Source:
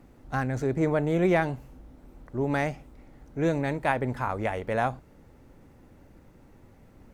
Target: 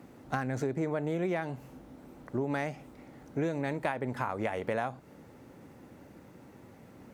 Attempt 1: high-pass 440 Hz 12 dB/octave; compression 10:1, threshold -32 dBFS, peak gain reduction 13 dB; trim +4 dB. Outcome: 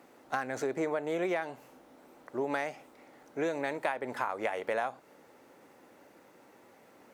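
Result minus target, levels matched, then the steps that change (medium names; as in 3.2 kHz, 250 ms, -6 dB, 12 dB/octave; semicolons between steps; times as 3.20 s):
125 Hz band -13.0 dB
change: high-pass 130 Hz 12 dB/octave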